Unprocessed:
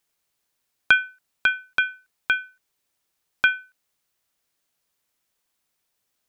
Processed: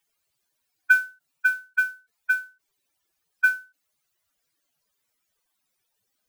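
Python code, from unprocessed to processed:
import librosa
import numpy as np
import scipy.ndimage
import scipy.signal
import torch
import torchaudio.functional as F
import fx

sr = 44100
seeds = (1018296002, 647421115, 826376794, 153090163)

y = fx.spec_expand(x, sr, power=2.9)
y = fx.mod_noise(y, sr, seeds[0], snr_db=24)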